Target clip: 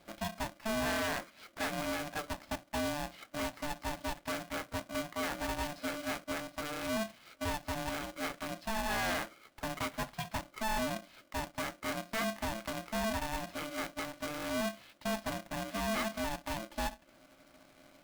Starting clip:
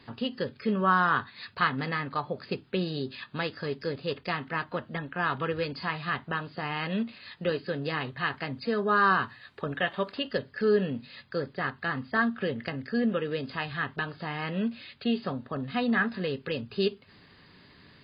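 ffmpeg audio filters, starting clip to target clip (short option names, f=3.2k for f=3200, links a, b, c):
-af "lowpass=f=1.7k:p=1,equalizer=f=170:w=7.3:g=9,asoftclip=type=hard:threshold=-22.5dB,acrusher=bits=2:mode=log:mix=0:aa=0.000001,aeval=exprs='val(0)*sgn(sin(2*PI*440*n/s))':c=same,volume=-6dB"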